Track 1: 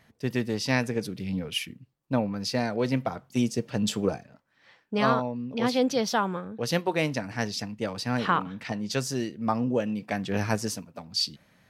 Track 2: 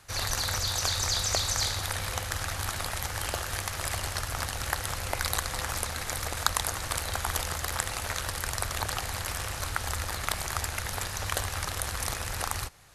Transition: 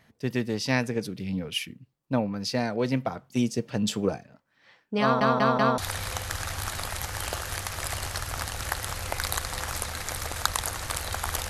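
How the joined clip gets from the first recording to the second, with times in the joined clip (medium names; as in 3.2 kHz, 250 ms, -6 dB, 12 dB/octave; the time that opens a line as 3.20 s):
track 1
5.02 s: stutter in place 0.19 s, 4 plays
5.78 s: go over to track 2 from 1.79 s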